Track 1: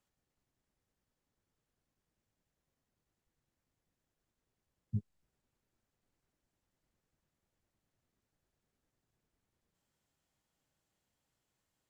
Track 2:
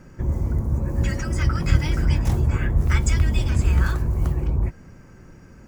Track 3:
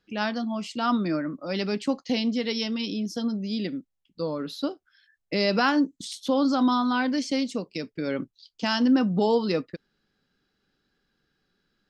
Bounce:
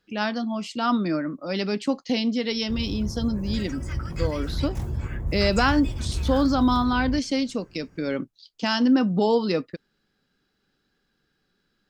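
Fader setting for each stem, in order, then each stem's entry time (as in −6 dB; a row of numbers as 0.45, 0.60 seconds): −7.0, −9.0, +1.5 decibels; 0.00, 2.50, 0.00 seconds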